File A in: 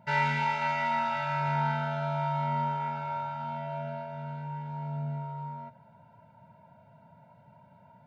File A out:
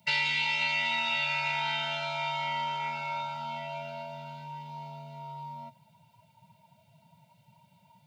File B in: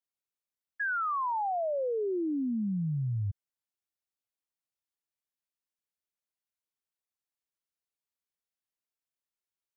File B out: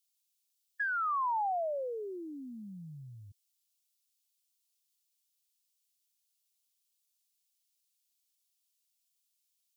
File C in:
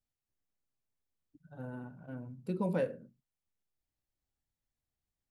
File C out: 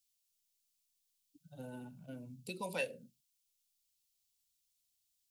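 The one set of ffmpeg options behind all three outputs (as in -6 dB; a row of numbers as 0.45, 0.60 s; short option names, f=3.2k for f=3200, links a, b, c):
-filter_complex "[0:a]afftdn=nr=12:nf=-44,acrossover=split=670[a][b];[a]acompressor=threshold=-41dB:ratio=6[c];[b]aexciter=amount=10.9:drive=7.1:freq=2.4k[d];[c][d]amix=inputs=2:normalize=0,acrossover=split=150|400[e][f][g];[e]acompressor=threshold=-60dB:ratio=4[h];[f]acompressor=threshold=-47dB:ratio=4[i];[g]acompressor=threshold=-27dB:ratio=4[j];[h][i][j]amix=inputs=3:normalize=0"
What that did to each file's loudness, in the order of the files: +1.0, -3.0, -5.5 LU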